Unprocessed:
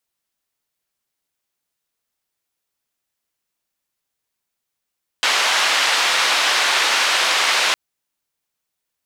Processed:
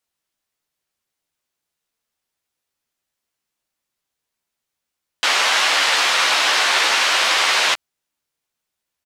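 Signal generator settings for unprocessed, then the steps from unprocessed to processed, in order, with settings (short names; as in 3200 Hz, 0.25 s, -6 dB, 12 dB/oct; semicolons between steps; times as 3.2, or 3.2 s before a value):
noise band 740–3700 Hz, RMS -17.5 dBFS 2.51 s
high shelf 11000 Hz -6 dB; doubler 13 ms -7 dB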